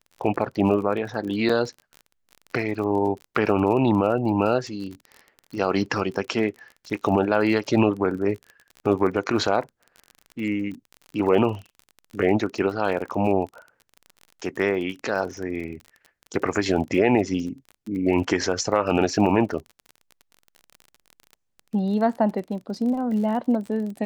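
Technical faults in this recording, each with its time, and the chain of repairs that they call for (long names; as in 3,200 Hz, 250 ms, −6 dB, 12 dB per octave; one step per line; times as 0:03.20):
surface crackle 34 per second −32 dBFS
0:01.49: drop-out 4.8 ms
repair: click removal
repair the gap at 0:01.49, 4.8 ms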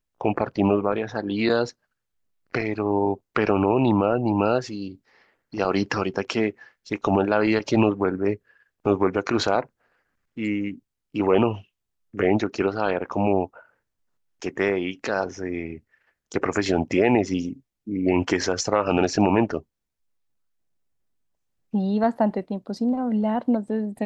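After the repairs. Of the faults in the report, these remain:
none of them is left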